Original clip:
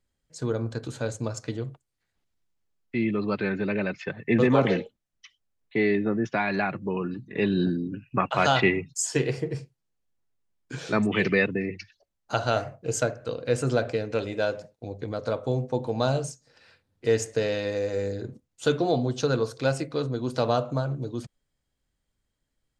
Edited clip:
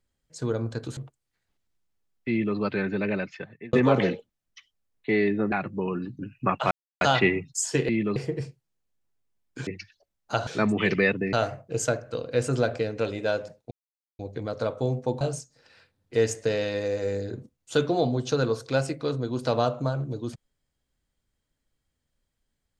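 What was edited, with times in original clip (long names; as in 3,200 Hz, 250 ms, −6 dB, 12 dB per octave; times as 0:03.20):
0:00.97–0:01.64: remove
0:02.97–0:03.24: duplicate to 0:09.30
0:03.81–0:04.40: fade out
0:06.19–0:06.61: remove
0:07.28–0:07.90: remove
0:08.42: splice in silence 0.30 s
0:11.67–0:12.47: move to 0:10.81
0:14.85: splice in silence 0.48 s
0:15.87–0:16.12: remove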